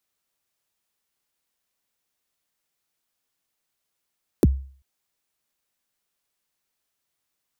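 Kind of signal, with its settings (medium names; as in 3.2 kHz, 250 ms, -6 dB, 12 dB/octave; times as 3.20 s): kick drum length 0.39 s, from 470 Hz, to 67 Hz, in 31 ms, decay 0.45 s, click on, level -9 dB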